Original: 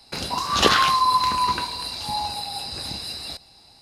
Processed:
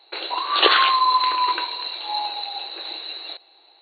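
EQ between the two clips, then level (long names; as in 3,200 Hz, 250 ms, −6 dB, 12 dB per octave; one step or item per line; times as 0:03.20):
dynamic equaliser 2,900 Hz, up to +4 dB, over −34 dBFS, Q 0.76
linear-phase brick-wall band-pass 300–4,500 Hz
0.0 dB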